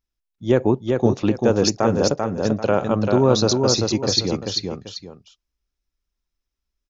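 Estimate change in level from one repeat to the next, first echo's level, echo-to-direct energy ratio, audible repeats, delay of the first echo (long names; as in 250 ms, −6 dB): −10.5 dB, −4.0 dB, −3.5 dB, 2, 391 ms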